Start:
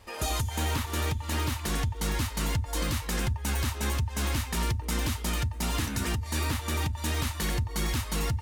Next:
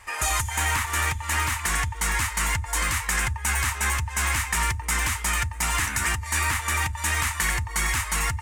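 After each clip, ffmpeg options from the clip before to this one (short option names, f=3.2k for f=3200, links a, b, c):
-af "equalizer=f=125:t=o:w=1:g=-4,equalizer=f=250:t=o:w=1:g=-9,equalizer=f=500:t=o:w=1:g=-7,equalizer=f=1k:t=o:w=1:g=6,equalizer=f=2k:t=o:w=1:g=11,equalizer=f=4k:t=o:w=1:g=-6,equalizer=f=8k:t=o:w=1:g=10,volume=2.5dB"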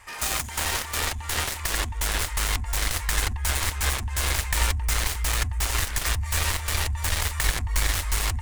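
-af "aeval=exprs='0.282*(cos(1*acos(clip(val(0)/0.282,-1,1)))-cos(1*PI/2))+0.0794*(cos(7*acos(clip(val(0)/0.282,-1,1)))-cos(7*PI/2))':c=same,asubboost=boost=8:cutoff=73,volume=-1.5dB"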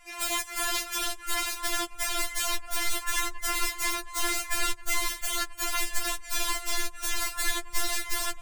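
-af "afftfilt=real='re*4*eq(mod(b,16),0)':imag='im*4*eq(mod(b,16),0)':win_size=2048:overlap=0.75"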